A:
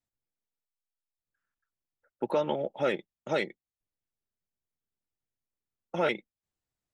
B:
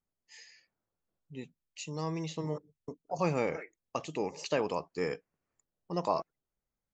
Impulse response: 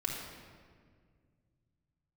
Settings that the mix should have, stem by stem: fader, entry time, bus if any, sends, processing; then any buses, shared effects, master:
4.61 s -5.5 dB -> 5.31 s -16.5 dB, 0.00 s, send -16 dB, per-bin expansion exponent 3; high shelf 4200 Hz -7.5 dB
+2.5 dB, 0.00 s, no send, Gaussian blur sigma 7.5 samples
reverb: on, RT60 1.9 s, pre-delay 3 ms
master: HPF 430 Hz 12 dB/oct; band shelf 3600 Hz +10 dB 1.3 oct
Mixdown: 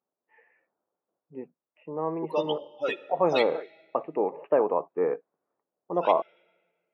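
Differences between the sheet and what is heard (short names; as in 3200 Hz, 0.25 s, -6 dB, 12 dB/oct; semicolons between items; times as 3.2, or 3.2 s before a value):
stem A -5.5 dB -> +3.5 dB; stem B +2.5 dB -> +12.0 dB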